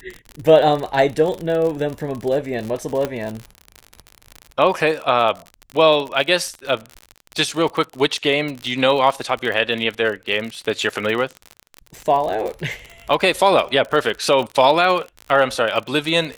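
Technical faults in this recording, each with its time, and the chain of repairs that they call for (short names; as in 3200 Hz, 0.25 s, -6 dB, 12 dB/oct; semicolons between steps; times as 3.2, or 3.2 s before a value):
crackle 48/s -24 dBFS
3.05 pop -9 dBFS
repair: de-click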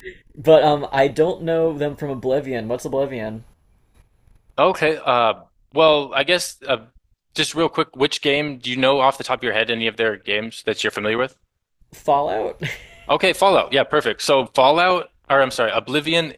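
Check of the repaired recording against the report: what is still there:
3.05 pop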